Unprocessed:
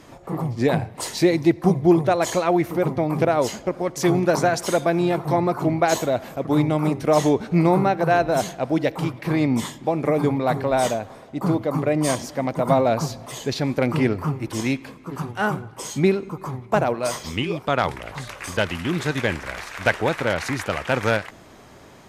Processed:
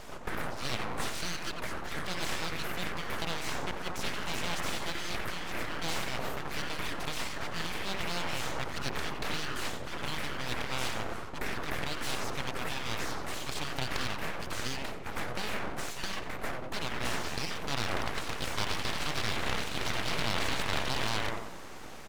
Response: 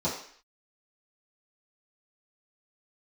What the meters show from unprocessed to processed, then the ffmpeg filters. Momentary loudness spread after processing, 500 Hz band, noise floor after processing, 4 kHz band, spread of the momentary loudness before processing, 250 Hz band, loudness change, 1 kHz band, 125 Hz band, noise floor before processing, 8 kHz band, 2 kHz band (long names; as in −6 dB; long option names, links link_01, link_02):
5 LU, −19.0 dB, −39 dBFS, −1.0 dB, 10 LU, −19.5 dB, −13.0 dB, −12.0 dB, −16.0 dB, −46 dBFS, −7.0 dB, −6.5 dB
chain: -filter_complex "[0:a]asplit=2[link_01][link_02];[link_02]adelay=91,lowpass=frequency=1600:poles=1,volume=-9.5dB,asplit=2[link_03][link_04];[link_04]adelay=91,lowpass=frequency=1600:poles=1,volume=0.51,asplit=2[link_05][link_06];[link_06]adelay=91,lowpass=frequency=1600:poles=1,volume=0.51,asplit=2[link_07][link_08];[link_08]adelay=91,lowpass=frequency=1600:poles=1,volume=0.51,asplit=2[link_09][link_10];[link_10]adelay=91,lowpass=frequency=1600:poles=1,volume=0.51,asplit=2[link_11][link_12];[link_12]adelay=91,lowpass=frequency=1600:poles=1,volume=0.51[link_13];[link_01][link_03][link_05][link_07][link_09][link_11][link_13]amix=inputs=7:normalize=0,afftfilt=real='re*lt(hypot(re,im),0.141)':imag='im*lt(hypot(re,im),0.141)':win_size=1024:overlap=0.75,acrossover=split=3100[link_14][link_15];[link_15]acompressor=threshold=-46dB:ratio=4:attack=1:release=60[link_16];[link_14][link_16]amix=inputs=2:normalize=0,aeval=exprs='abs(val(0))':channel_layout=same,volume=3dB"